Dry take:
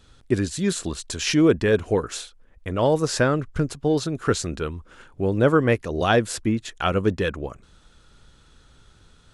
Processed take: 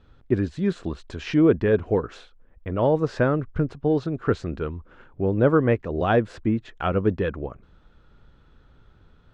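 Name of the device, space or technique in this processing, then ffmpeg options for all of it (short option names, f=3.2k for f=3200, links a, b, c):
phone in a pocket: -af "lowpass=3.6k,highshelf=f=2.3k:g=-12"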